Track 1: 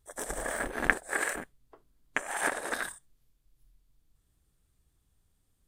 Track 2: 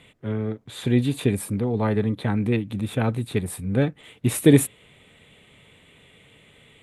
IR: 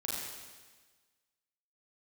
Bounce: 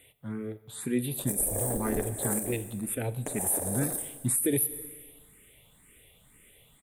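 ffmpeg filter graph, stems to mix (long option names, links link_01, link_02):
-filter_complex "[0:a]firequalizer=gain_entry='entry(520,0);entry(1400,-24);entry(11000,13)':delay=0.05:min_phase=1,adelay=1100,volume=2dB,asplit=2[link_01][link_02];[link_02]volume=-9dB[link_03];[1:a]aexciter=amount=13.4:drive=4.8:freq=8600,asplit=2[link_04][link_05];[link_05]afreqshift=2[link_06];[link_04][link_06]amix=inputs=2:normalize=1,volume=-7dB,asplit=2[link_07][link_08];[link_08]volume=-17.5dB[link_09];[2:a]atrim=start_sample=2205[link_10];[link_03][link_09]amix=inputs=2:normalize=0[link_11];[link_11][link_10]afir=irnorm=-1:irlink=0[link_12];[link_01][link_07][link_12]amix=inputs=3:normalize=0,alimiter=limit=-17dB:level=0:latency=1:release=132"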